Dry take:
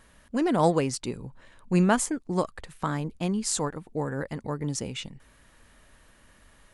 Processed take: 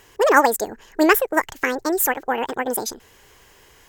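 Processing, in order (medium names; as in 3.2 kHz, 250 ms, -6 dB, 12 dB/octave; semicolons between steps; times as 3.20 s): ten-band graphic EQ 250 Hz +9 dB, 500 Hz +6 dB, 1 kHz +10 dB, 4 kHz +11 dB, 8 kHz +8 dB; speed mistake 45 rpm record played at 78 rpm; trim -1 dB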